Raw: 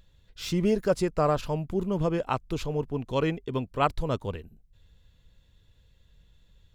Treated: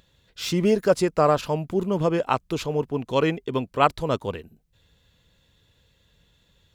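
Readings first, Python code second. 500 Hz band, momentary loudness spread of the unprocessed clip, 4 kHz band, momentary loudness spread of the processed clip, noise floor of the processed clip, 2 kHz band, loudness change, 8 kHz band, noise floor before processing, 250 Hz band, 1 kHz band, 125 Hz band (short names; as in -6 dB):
+5.5 dB, 7 LU, +6.0 dB, 8 LU, -65 dBFS, +6.0 dB, +4.5 dB, +6.0 dB, -63 dBFS, +3.5 dB, +6.0 dB, +1.5 dB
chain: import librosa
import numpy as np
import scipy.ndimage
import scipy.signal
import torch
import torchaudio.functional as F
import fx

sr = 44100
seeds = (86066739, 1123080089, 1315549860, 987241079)

y = fx.highpass(x, sr, hz=200.0, slope=6)
y = y * 10.0 ** (6.0 / 20.0)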